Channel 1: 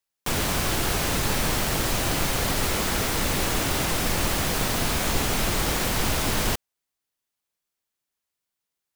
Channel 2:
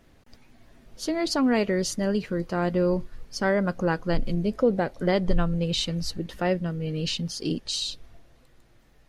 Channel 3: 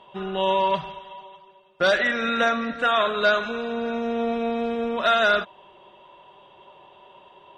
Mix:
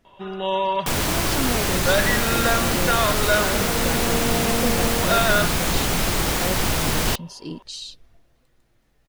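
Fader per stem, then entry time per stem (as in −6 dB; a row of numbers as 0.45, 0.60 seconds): +2.5, −5.5, −1.0 decibels; 0.60, 0.00, 0.05 seconds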